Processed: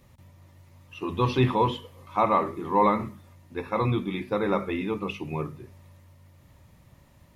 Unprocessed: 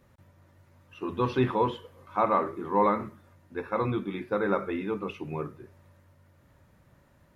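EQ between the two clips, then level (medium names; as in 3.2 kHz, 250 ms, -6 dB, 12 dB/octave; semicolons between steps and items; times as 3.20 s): peaking EQ 450 Hz -7 dB 2 oct; peaking EQ 1.5 kHz -11.5 dB 0.44 oct; hum notches 50/100/150/200/250 Hz; +8.0 dB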